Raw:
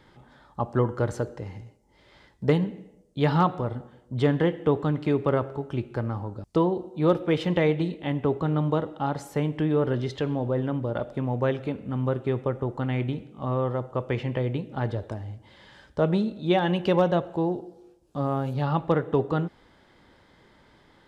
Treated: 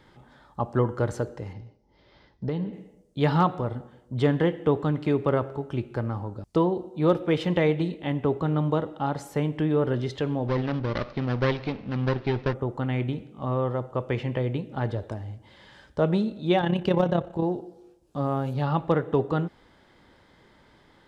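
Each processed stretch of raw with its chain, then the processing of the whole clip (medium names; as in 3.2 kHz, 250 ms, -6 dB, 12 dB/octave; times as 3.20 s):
1.53–2.73 s: steep low-pass 5.7 kHz 48 dB/octave + peaking EQ 2.1 kHz -4.5 dB 2 oct + compression 5:1, threshold -25 dBFS
10.48–12.54 s: comb filter that takes the minimum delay 0.46 ms + steep low-pass 5.5 kHz 48 dB/octave + treble shelf 2.3 kHz +9.5 dB
16.61–17.43 s: bass shelf 120 Hz +11 dB + AM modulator 33 Hz, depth 45%
whole clip: none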